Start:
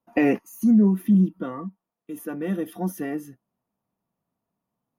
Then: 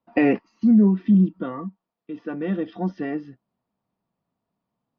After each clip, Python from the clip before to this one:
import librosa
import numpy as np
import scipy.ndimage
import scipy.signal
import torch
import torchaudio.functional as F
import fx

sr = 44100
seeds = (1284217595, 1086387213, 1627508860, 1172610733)

y = scipy.signal.sosfilt(scipy.signal.butter(12, 5100.0, 'lowpass', fs=sr, output='sos'), x)
y = F.gain(torch.from_numpy(y), 1.5).numpy()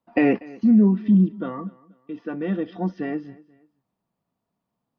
y = fx.echo_feedback(x, sr, ms=241, feedback_pct=34, wet_db=-22)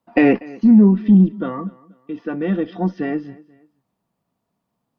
y = fx.cheby_harmonics(x, sr, harmonics=(4,), levels_db=(-31,), full_scale_db=-7.5)
y = F.gain(torch.from_numpy(y), 5.0).numpy()